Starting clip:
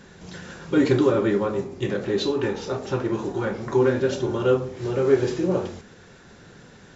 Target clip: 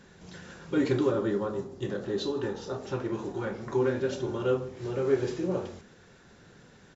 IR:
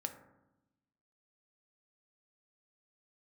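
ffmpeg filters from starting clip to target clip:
-filter_complex "[0:a]asettb=1/sr,asplit=3[link_01][link_02][link_03];[link_01]atrim=end=1.114[link_04];[link_02]atrim=start=1.11:end=2.8,asetpts=PTS-STARTPTS,afade=type=in:duration=0.004:curve=qsin,afade=type=out:start_time=1.686:duration=0.004:curve=qsin,equalizer=frequency=2300:width=4.1:gain=-11[link_05];[link_03]atrim=start=2.796[link_06];[link_04][link_05]acrossfade=duration=0.004:curve1=hsin:curve2=qsin[link_07];[link_07][link_06]acrossfade=duration=0.004:curve1=qsin:curve2=hsin,asplit=2[link_08][link_09];[link_09]aecho=0:1:157:0.0708[link_10];[link_08][link_10]amix=inputs=2:normalize=0,volume=-7dB"

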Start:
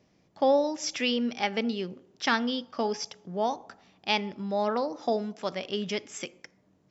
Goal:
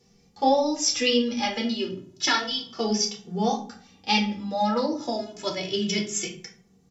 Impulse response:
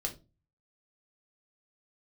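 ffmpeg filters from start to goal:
-filter_complex "[0:a]bass=frequency=250:gain=5,treble=frequency=4000:gain=13[link_01];[1:a]atrim=start_sample=2205,asetrate=28224,aresample=44100[link_02];[link_01][link_02]afir=irnorm=-1:irlink=0,asplit=2[link_03][link_04];[link_04]adelay=2.2,afreqshift=0.3[link_05];[link_03][link_05]amix=inputs=2:normalize=1"

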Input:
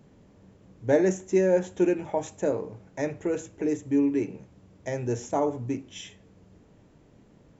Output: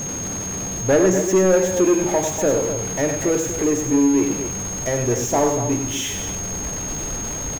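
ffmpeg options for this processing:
ffmpeg -i in.wav -filter_complex "[0:a]aeval=exprs='val(0)+0.5*0.02*sgn(val(0))':channel_layout=same,aecho=1:1:96.21|242:0.447|0.316,asplit=2[link_01][link_02];[link_02]aeval=exprs='0.376*sin(PI/2*2.51*val(0)/0.376)':channel_layout=same,volume=-10dB[link_03];[link_01][link_03]amix=inputs=2:normalize=0,asubboost=boost=2.5:cutoff=69,aeval=exprs='val(0)+0.0447*sin(2*PI*6500*n/s)':channel_layout=same" out.wav

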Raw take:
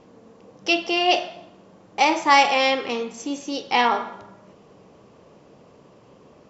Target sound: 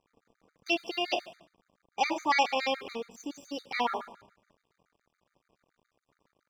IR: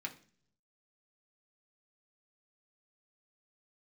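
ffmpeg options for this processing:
-af "aeval=exprs='sgn(val(0))*max(abs(val(0))-0.00447,0)':channel_layout=same,afftfilt=real='re*gt(sin(2*PI*7.1*pts/sr)*(1-2*mod(floor(b*sr/1024/1200),2)),0)':imag='im*gt(sin(2*PI*7.1*pts/sr)*(1-2*mod(floor(b*sr/1024/1200),2)),0)':win_size=1024:overlap=0.75,volume=-7dB"

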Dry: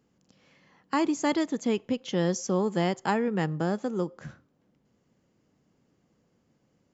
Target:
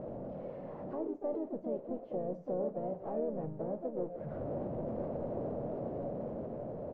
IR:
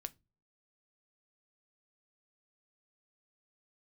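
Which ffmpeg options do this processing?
-filter_complex "[0:a]aeval=exprs='val(0)+0.5*0.0398*sgn(val(0))':channel_layout=same,agate=range=-13dB:threshold=-25dB:ratio=16:detection=peak,dynaudnorm=framelen=590:gausssize=5:maxgain=5dB,alimiter=limit=-18.5dB:level=0:latency=1:release=125,acompressor=threshold=-39dB:ratio=20,asoftclip=type=tanh:threshold=-35.5dB,asplit=3[link_01][link_02][link_03];[link_02]asetrate=37084,aresample=44100,atempo=1.18921,volume=-9dB[link_04];[link_03]asetrate=58866,aresample=44100,atempo=0.749154,volume=-6dB[link_05];[link_01][link_04][link_05]amix=inputs=3:normalize=0,lowpass=frequency=590:width_type=q:width=4.9[link_06];[1:a]atrim=start_sample=2205,asetrate=28665,aresample=44100[link_07];[link_06][link_07]afir=irnorm=-1:irlink=0,volume=1.5dB"

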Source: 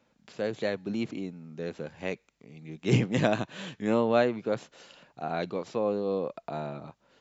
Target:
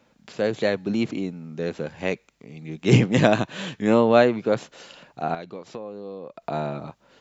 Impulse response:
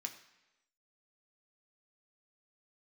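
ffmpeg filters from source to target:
-filter_complex "[0:a]asettb=1/sr,asplit=3[link_01][link_02][link_03];[link_01]atrim=end=5.344[link_04];[link_02]atrim=start=5.34:end=6.42,asetpts=PTS-STARTPTS,afade=type=in:duration=0.004:curve=qsin,afade=type=out:start_time=1.076:duration=0.004:curve=qsin,acompressor=threshold=-40dB:ratio=12[link_05];[link_03]atrim=start=6.416[link_06];[link_04][link_05]acrossfade=duration=0.004:curve1=hsin:curve2=qsin[link_07];[link_07][link_06]acrossfade=duration=0.004:curve1=qsin:curve2=hsin,volume=7.5dB"

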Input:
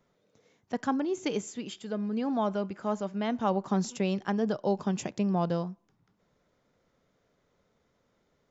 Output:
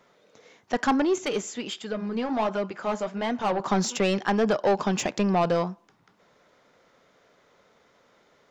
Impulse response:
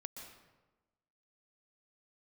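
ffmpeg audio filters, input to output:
-filter_complex "[0:a]asplit=2[link_01][link_02];[link_02]highpass=frequency=720:poles=1,volume=19dB,asoftclip=type=tanh:threshold=-14.5dB[link_03];[link_01][link_03]amix=inputs=2:normalize=0,lowpass=frequency=4200:poles=1,volume=-6dB,asettb=1/sr,asplit=3[link_04][link_05][link_06];[link_04]atrim=end=1.184[link_07];[link_05]atrim=start=1.18:end=3.6,asetpts=PTS-STARTPTS,afade=type=in:duration=0.004:curve=qsin,afade=type=out:start_time=2.416:duration=0.004:curve=qsin,flanger=delay=0.5:depth=8.6:regen=-54:speed=1.4:shape=sinusoidal[link_08];[link_06]atrim=start=3.596[link_09];[link_07][link_08]acrossfade=duration=0.004:curve1=hsin:curve2=qsin[link_10];[link_10][link_09]acrossfade=duration=0.004:curve1=qsin:curve2=hsin,volume=2dB"

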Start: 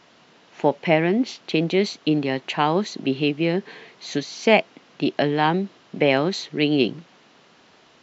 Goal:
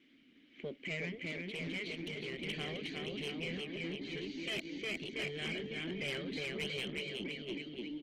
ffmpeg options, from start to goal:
ffmpeg -i in.wav -filter_complex "[0:a]asplit=3[link_01][link_02][link_03];[link_01]afade=type=out:start_time=1.23:duration=0.02[link_04];[link_02]adynamicequalizer=threshold=0.0141:dfrequency=750:dqfactor=2.8:tfrequency=750:tqfactor=2.8:attack=5:release=100:ratio=0.375:range=3.5:mode=boostabove:tftype=bell,afade=type=in:start_time=1.23:duration=0.02,afade=type=out:start_time=3.46:duration=0.02[link_05];[link_03]afade=type=in:start_time=3.46:duration=0.02[link_06];[link_04][link_05][link_06]amix=inputs=3:normalize=0,asplit=3[link_07][link_08][link_09];[link_07]bandpass=frequency=270:width_type=q:width=8,volume=0dB[link_10];[link_08]bandpass=frequency=2290:width_type=q:width=8,volume=-6dB[link_11];[link_09]bandpass=frequency=3010:width_type=q:width=8,volume=-9dB[link_12];[link_10][link_11][link_12]amix=inputs=3:normalize=0,highshelf=frequency=6200:gain=-7,aecho=1:1:360|684|975.6|1238|1474:0.631|0.398|0.251|0.158|0.1,afftfilt=real='re*lt(hypot(re,im),0.126)':imag='im*lt(hypot(re,im),0.126)':win_size=1024:overlap=0.75,asoftclip=type=tanh:threshold=-34dB,volume=2dB" -ar 48000 -c:a libopus -b:a 16k out.opus

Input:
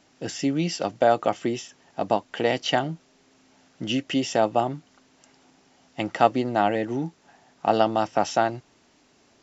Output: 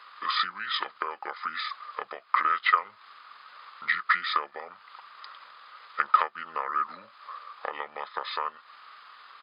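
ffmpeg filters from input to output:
ffmpeg -i in.wav -af "acompressor=threshold=-31dB:ratio=12,highpass=frequency=1800:width_type=q:width=6.9,asetrate=29433,aresample=44100,atempo=1.49831,volume=8dB" out.wav

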